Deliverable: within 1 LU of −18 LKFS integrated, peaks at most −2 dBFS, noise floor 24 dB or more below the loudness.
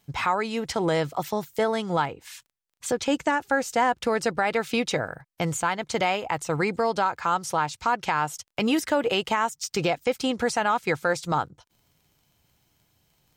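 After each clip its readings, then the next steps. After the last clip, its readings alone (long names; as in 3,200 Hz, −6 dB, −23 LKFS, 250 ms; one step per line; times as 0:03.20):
crackle rate 20 per second; integrated loudness −26.0 LKFS; sample peak −11.0 dBFS; target loudness −18.0 LKFS
→ click removal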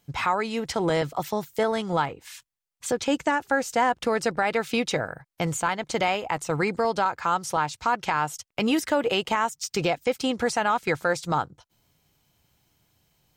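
crackle rate 0.075 per second; integrated loudness −26.0 LKFS; sample peak −11.0 dBFS; target loudness −18.0 LKFS
→ level +8 dB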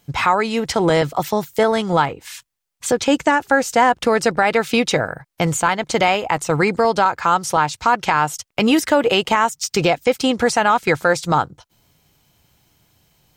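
integrated loudness −18.0 LKFS; sample peak −3.0 dBFS; background noise floor −71 dBFS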